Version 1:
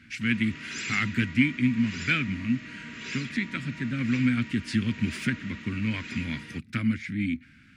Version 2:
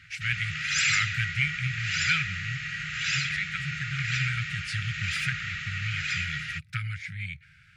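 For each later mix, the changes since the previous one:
background +10.5 dB; master: add brick-wall FIR band-stop 170–1200 Hz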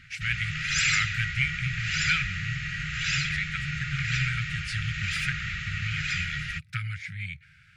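background: remove HPF 240 Hz 6 dB/oct

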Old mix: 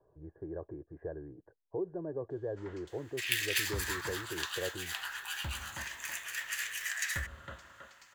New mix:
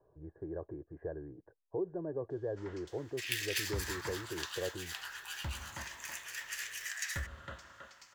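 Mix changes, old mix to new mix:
second sound -5.0 dB; master: add bell 5400 Hz +6 dB 0.49 oct

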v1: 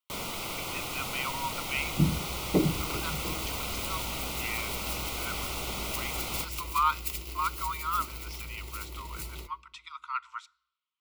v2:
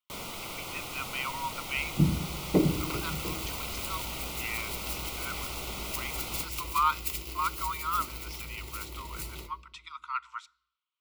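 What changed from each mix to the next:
first sound -3.5 dB; second sound: send +7.5 dB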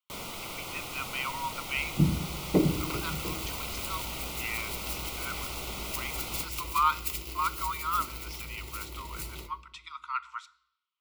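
speech: send +7.5 dB

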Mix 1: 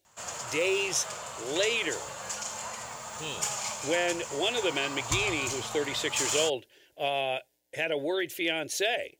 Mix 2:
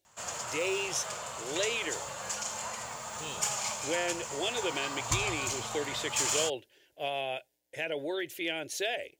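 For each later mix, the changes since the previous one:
speech -4.5 dB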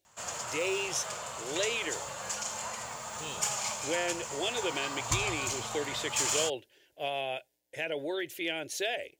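none

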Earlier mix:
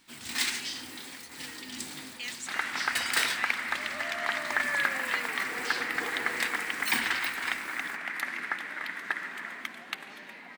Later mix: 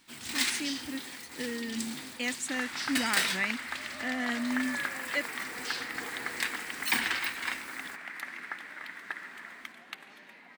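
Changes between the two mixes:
speech: remove band-pass 4200 Hz, Q 1; second sound -6.5 dB

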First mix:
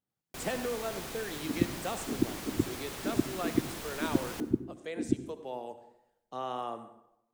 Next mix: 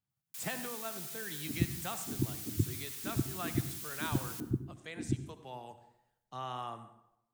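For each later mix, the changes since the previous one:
first sound: add differentiator; master: add graphic EQ 125/250/500 Hz +8/-6/-11 dB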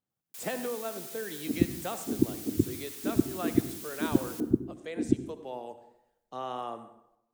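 second sound +3.5 dB; master: add graphic EQ 125/250/500 Hz -8/+6/+11 dB

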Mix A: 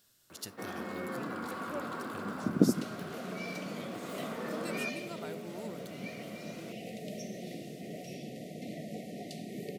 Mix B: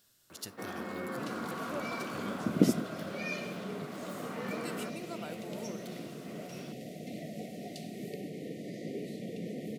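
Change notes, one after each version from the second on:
second sound: entry -1.55 s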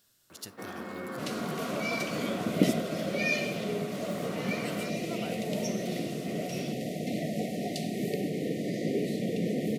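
second sound +9.5 dB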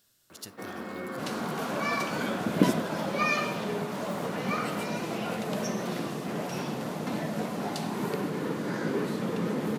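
first sound: send on; second sound: remove brick-wall FIR band-stop 760–1800 Hz

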